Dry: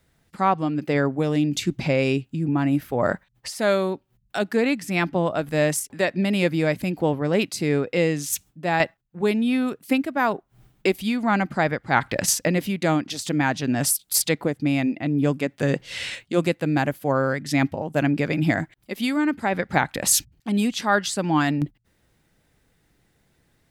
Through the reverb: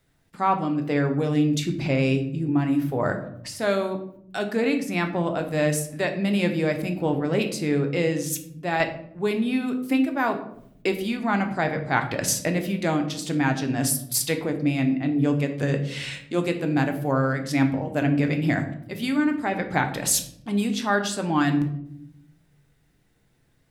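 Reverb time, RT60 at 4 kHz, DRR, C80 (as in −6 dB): 0.70 s, 0.40 s, 4.5 dB, 13.0 dB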